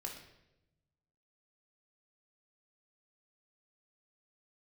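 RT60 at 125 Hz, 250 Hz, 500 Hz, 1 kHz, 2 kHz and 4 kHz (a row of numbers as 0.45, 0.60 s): 1.7, 1.3, 1.0, 0.75, 0.80, 0.75 s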